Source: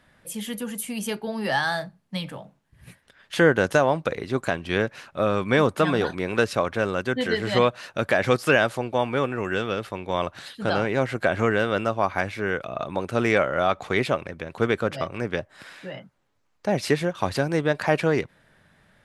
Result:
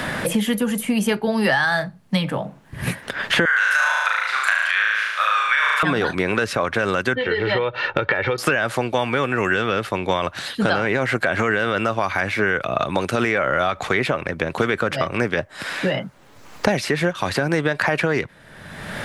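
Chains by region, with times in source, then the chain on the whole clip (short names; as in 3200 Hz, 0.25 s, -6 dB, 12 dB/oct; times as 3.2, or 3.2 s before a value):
3.45–5.83 HPF 1200 Hz 24 dB/oct + flutter echo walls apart 6.3 m, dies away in 1.1 s
7.15–8.38 LPF 3600 Hz 24 dB/oct + comb 2.2 ms, depth 66% + compressor 10:1, threshold -27 dBFS
whole clip: dynamic EQ 1700 Hz, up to +6 dB, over -38 dBFS, Q 1.1; maximiser +12 dB; three-band squash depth 100%; gain -7 dB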